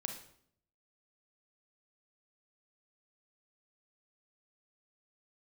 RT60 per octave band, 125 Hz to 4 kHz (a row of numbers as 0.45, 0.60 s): 0.90, 0.85, 0.70, 0.60, 0.55, 0.55 s